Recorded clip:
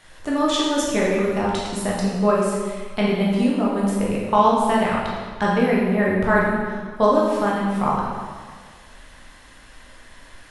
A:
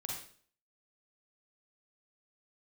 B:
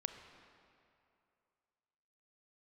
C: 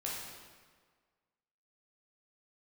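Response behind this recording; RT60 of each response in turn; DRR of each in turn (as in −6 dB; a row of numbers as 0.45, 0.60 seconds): C; 0.50, 2.6, 1.6 seconds; −2.5, 7.0, −5.5 decibels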